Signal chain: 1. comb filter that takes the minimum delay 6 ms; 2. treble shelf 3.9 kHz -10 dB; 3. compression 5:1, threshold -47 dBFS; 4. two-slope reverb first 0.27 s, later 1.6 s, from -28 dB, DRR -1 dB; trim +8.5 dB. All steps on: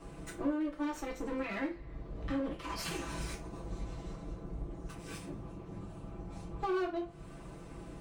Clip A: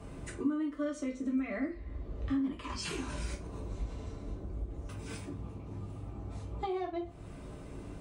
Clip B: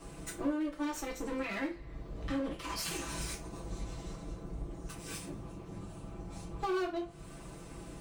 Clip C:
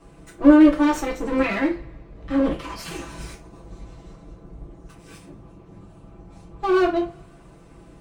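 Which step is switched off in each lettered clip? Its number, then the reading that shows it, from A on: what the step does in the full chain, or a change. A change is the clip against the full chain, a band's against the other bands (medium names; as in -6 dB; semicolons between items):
1, 125 Hz band +3.5 dB; 2, 8 kHz band +6.5 dB; 3, momentary loudness spread change +8 LU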